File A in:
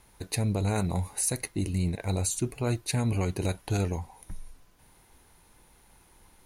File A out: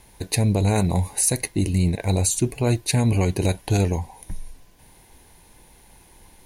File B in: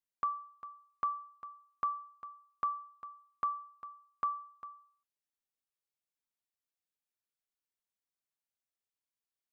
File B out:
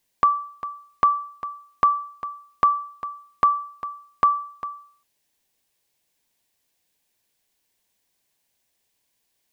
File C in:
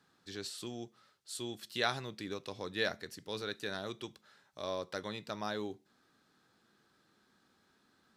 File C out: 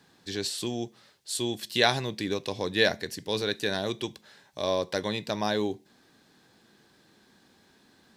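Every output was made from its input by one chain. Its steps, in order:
bell 1300 Hz -12 dB 0.27 oct; normalise peaks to -6 dBFS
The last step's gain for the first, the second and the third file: +8.0, +20.5, +11.0 dB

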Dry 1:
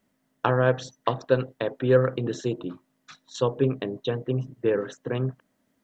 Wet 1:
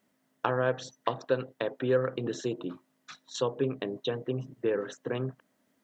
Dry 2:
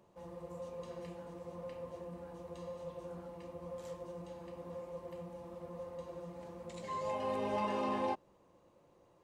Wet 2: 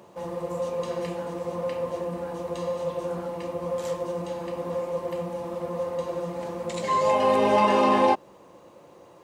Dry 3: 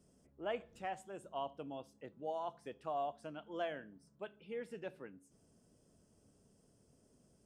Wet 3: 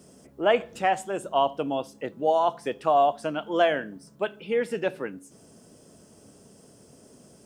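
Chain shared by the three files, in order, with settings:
HPF 200 Hz 6 dB/oct; compressor 1.5:1, threshold -33 dBFS; normalise peaks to -9 dBFS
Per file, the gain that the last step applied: +0.5, +17.0, +19.0 dB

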